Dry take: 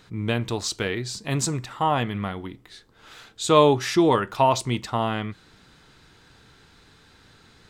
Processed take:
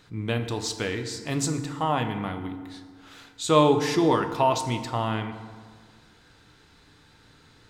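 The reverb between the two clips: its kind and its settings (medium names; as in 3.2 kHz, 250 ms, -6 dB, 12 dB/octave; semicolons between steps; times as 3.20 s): FDN reverb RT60 1.7 s, low-frequency decay 1.05×, high-frequency decay 0.55×, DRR 7 dB; trim -3 dB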